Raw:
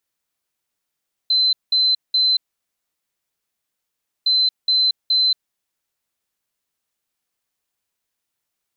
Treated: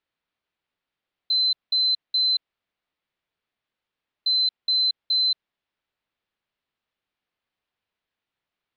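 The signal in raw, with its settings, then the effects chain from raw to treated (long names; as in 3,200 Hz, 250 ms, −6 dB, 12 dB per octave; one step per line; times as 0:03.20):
beeps in groups sine 4,060 Hz, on 0.23 s, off 0.19 s, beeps 3, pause 1.89 s, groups 2, −13.5 dBFS
low-pass filter 3,800 Hz 24 dB per octave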